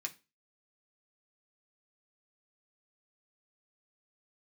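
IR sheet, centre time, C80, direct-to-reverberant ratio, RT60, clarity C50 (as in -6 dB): 6 ms, 24.5 dB, 0.5 dB, no single decay rate, 18.5 dB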